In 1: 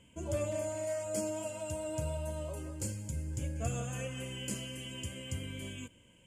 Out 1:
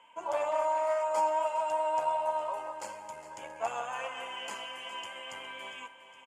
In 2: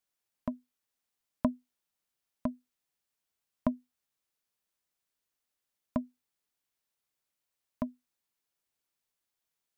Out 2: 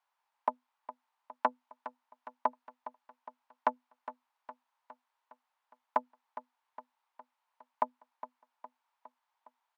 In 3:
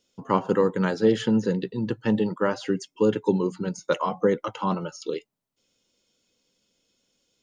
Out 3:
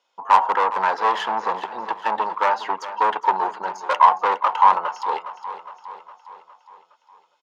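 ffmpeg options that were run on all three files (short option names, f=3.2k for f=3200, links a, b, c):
-filter_complex "[0:a]asplit=2[a][b];[b]adynamicsmooth=sensitivity=6:basefreq=4.8k,volume=3dB[c];[a][c]amix=inputs=2:normalize=0,aemphasis=mode=reproduction:type=cd,aeval=exprs='(tanh(6.31*val(0)+0.6)-tanh(0.6))/6.31':c=same,highpass=f=910:t=q:w=5.3,aecho=1:1:411|822|1233|1644|2055|2466:0.2|0.112|0.0626|0.035|0.0196|0.011,volume=1.5dB"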